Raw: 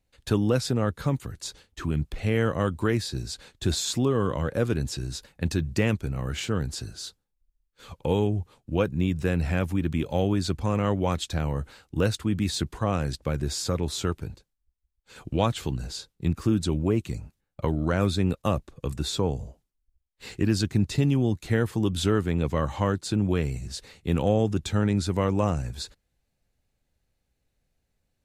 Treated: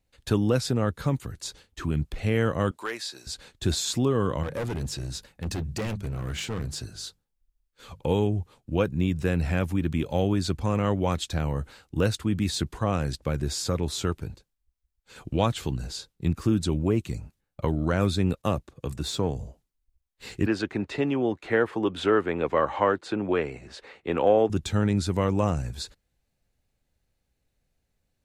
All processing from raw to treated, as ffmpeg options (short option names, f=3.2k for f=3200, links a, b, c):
-filter_complex "[0:a]asettb=1/sr,asplit=3[a][b][c];[a]atrim=end=2.714[d];[b]atrim=start=2.71:end=3.27,asetpts=PTS-STARTPTS,afade=t=in:d=0.004:c=qsin,afade=t=out:st=0.556:d=0.004:c=qsin,highpass=660,acrossover=split=9700[e][f];[f]acompressor=threshold=-55dB:ratio=4:attack=1:release=60[g];[e][g]amix=inputs=2:normalize=0,asoftclip=type=hard:threshold=-23.5dB[h];[c]atrim=start=3.266[i];[d][h]acrossfade=d=0.004:c1=hsin:c2=qsin[j];[j][i]acrossfade=d=0.004:c1=qsin:c2=hsin,asettb=1/sr,asplit=3[k][l][m];[k]atrim=end=4.434[n];[l]atrim=start=4.43:end=8,asetpts=PTS-STARTPTS,afade=t=in:d=0.004:c=qsin,afade=t=out:st=3.566:d=0.004:c=qsin,bandreject=f=50:t=h:w=6,bandreject=f=100:t=h:w=6,bandreject=f=150:t=h:w=6,bandreject=f=200:t=h:w=6,volume=26.5dB,asoftclip=hard,volume=-26.5dB[o];[m]atrim=start=7.996[p];[n][o]acrossfade=d=0.004:c1=hsin:c2=qsin[q];[q][p]acrossfade=d=0.004:c1=qsin:c2=hsin,asettb=1/sr,asplit=3[r][s][t];[r]atrim=end=18.414[u];[s]atrim=start=18.41:end=19.36,asetpts=PTS-STARTPTS,afade=t=in:d=0.004:c=qsin,afade=t=out:st=0.946:d=0.004:c=qsin,aeval=exprs='if(lt(val(0),0),0.708*val(0),val(0))':c=same,highpass=52[v];[t]atrim=start=19.356[w];[u][v]acrossfade=d=0.004:c1=hsin:c2=qsin[x];[x][w]acrossfade=d=0.004:c1=qsin:c2=hsin,asettb=1/sr,asplit=3[y][z][aa];[y]atrim=end=20.464[ab];[z]atrim=start=20.46:end=24.5,asetpts=PTS-STARTPTS,afade=t=in:d=0.004:c=qsin,afade=t=out:st=4.036:d=0.004:c=qsin,acrossover=split=320 2700:gain=0.0891 1 0.112[ac][ad][ae];[ac][ad][ae]amix=inputs=3:normalize=0,acontrast=66,lowpass=9.8k[af];[aa]atrim=start=24.496[ag];[ab][af]acrossfade=d=0.004:c1=hsin:c2=qsin[ah];[ah][ag]acrossfade=d=0.004:c1=qsin:c2=hsin"